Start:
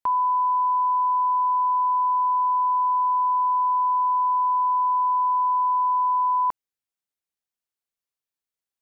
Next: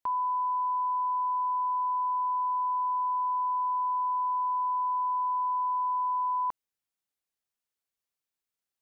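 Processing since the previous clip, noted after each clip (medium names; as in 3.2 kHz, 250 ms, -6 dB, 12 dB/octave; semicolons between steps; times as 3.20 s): peak limiter -25.5 dBFS, peak gain reduction 7.5 dB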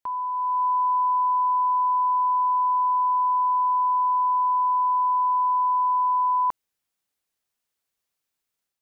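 level rider gain up to 7 dB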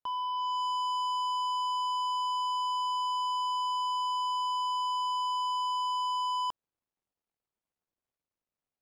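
median filter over 25 samples; saturation -30 dBFS, distortion -15 dB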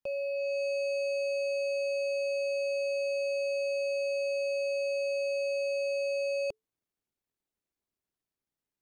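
frequency shift -440 Hz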